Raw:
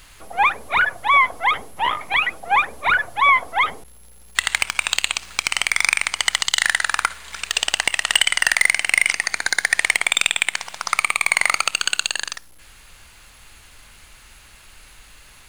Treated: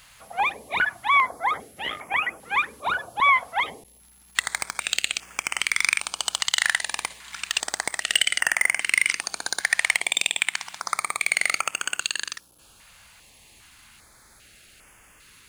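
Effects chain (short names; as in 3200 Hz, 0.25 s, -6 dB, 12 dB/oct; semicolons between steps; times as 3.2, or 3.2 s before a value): HPF 230 Hz 6 dB/oct; low shelf 390 Hz +5 dB; stepped notch 2.5 Hz 350–4000 Hz; gain -3.5 dB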